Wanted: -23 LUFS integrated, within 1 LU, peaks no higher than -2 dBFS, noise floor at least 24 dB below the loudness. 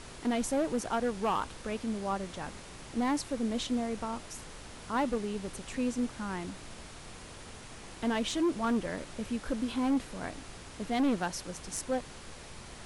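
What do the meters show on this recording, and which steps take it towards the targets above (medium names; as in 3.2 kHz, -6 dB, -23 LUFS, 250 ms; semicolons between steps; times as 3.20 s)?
clipped samples 1.4%; clipping level -24.0 dBFS; noise floor -48 dBFS; noise floor target -58 dBFS; loudness -33.5 LUFS; peak level -24.0 dBFS; loudness target -23.0 LUFS
-> clip repair -24 dBFS; noise print and reduce 10 dB; trim +10.5 dB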